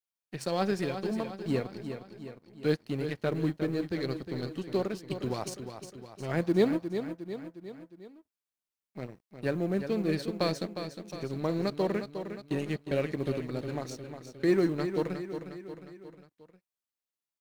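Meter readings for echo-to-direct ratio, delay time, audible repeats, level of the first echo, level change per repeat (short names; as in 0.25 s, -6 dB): -7.5 dB, 0.358 s, 4, -9.0 dB, -5.5 dB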